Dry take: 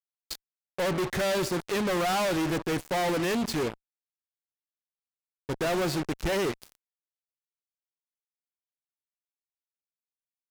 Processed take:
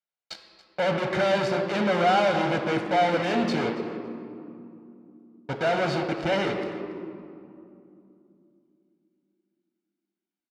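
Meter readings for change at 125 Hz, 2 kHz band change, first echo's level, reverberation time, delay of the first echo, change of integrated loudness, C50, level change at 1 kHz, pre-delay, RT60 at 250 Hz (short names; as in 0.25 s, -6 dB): +2.0 dB, +4.5 dB, -17.0 dB, 2.7 s, 0.281 s, +3.0 dB, 6.0 dB, +6.5 dB, 4 ms, 4.1 s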